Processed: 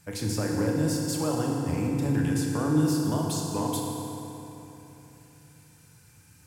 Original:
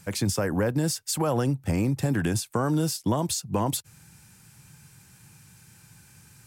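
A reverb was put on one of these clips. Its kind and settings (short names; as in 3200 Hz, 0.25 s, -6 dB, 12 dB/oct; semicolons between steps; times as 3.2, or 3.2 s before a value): FDN reverb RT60 3.4 s, high-frequency decay 0.65×, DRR -2 dB; gain -7 dB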